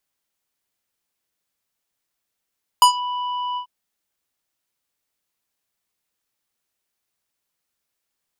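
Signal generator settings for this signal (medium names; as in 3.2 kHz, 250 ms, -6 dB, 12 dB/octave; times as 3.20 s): synth note square B5 24 dB/octave, low-pass 2.7 kHz, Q 1.2, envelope 2.5 oct, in 0.19 s, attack 1.3 ms, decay 0.10 s, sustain -17.5 dB, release 0.09 s, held 0.75 s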